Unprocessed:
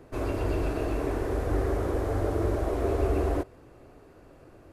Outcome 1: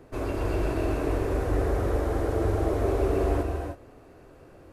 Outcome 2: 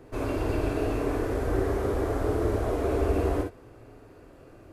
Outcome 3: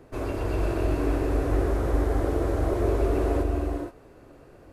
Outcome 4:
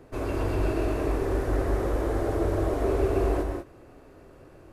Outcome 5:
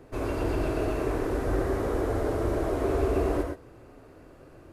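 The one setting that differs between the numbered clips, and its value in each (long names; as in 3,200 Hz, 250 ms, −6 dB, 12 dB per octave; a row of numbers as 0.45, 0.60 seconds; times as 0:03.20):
reverb whose tail is shaped and stops, gate: 340, 80, 500, 220, 140 milliseconds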